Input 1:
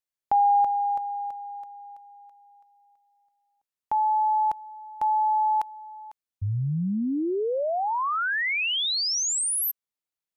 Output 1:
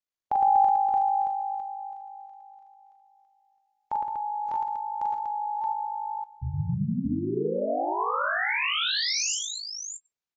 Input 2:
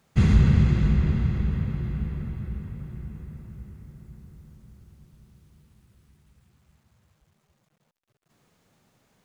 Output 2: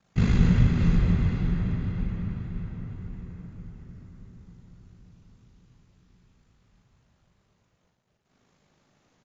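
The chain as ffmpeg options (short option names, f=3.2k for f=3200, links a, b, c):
-af "aeval=exprs='val(0)*sin(2*PI*26*n/s)':c=same,aecho=1:1:41|46|111|166|242|625:0.631|0.224|0.562|0.237|0.398|0.501,volume=-1.5dB" -ar 16000 -c:a aac -b:a 24k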